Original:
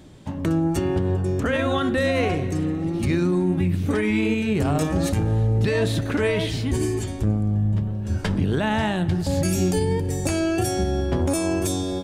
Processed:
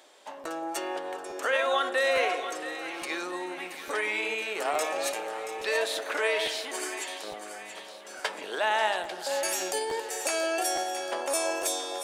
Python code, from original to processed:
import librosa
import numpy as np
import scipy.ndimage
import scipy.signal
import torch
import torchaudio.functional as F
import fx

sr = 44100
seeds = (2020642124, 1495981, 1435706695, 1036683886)

p1 = scipy.signal.sosfilt(scipy.signal.butter(4, 540.0, 'highpass', fs=sr, output='sos'), x)
p2 = p1 + fx.echo_split(p1, sr, split_hz=880.0, low_ms=174, high_ms=679, feedback_pct=52, wet_db=-10.5, dry=0)
y = fx.buffer_crackle(p2, sr, first_s=0.43, period_s=0.86, block=512, kind='repeat')